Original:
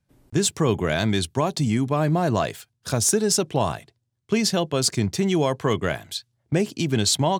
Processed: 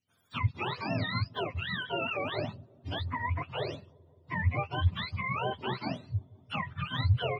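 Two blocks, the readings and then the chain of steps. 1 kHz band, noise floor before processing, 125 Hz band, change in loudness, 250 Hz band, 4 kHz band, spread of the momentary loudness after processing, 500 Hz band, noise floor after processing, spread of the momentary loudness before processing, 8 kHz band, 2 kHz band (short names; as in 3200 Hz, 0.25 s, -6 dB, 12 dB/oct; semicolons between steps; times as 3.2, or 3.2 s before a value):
-7.5 dB, -75 dBFS, -6.5 dB, -10.5 dB, -16.5 dB, -11.0 dB, 8 LU, -14.0 dB, -63 dBFS, 8 LU, under -40 dB, -3.5 dB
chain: spectrum mirrored in octaves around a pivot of 640 Hz; dark delay 0.173 s, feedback 75%, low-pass 490 Hz, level -23 dB; gain -8.5 dB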